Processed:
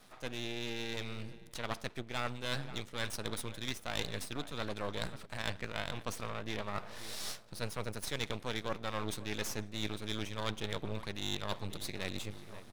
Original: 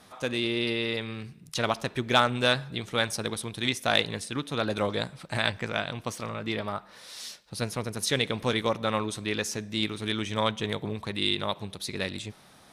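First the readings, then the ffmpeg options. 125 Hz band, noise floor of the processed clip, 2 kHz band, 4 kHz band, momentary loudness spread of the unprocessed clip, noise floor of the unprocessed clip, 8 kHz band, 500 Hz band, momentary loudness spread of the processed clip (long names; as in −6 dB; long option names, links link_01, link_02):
−8.0 dB, −53 dBFS, −10.5 dB, −10.5 dB, 10 LU, −55 dBFS, −7.5 dB, −11.5 dB, 4 LU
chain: -filter_complex "[0:a]dynaudnorm=framelen=430:gausssize=7:maxgain=11.5dB,aeval=exprs='max(val(0),0)':channel_layout=same,asplit=2[link_01][link_02];[link_02]adelay=537,lowpass=frequency=2100:poles=1,volume=-21dB,asplit=2[link_03][link_04];[link_04]adelay=537,lowpass=frequency=2100:poles=1,volume=0.53,asplit=2[link_05][link_06];[link_06]adelay=537,lowpass=frequency=2100:poles=1,volume=0.53,asplit=2[link_07][link_08];[link_08]adelay=537,lowpass=frequency=2100:poles=1,volume=0.53[link_09];[link_01][link_03][link_05][link_07][link_09]amix=inputs=5:normalize=0,areverse,acompressor=threshold=-33dB:ratio=4,areverse,volume=-1.5dB"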